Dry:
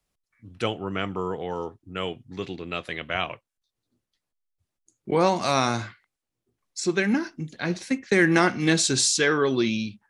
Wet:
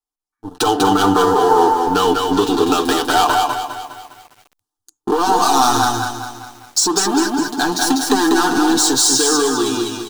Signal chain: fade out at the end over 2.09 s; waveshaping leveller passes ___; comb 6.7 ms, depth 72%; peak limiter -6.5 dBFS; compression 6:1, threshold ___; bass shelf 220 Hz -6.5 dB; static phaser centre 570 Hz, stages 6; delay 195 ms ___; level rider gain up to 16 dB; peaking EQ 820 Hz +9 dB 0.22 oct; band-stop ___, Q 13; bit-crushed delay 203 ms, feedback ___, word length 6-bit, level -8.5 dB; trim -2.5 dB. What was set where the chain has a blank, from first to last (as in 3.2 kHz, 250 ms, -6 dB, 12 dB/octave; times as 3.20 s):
5, -17 dBFS, -4.5 dB, 2.6 kHz, 55%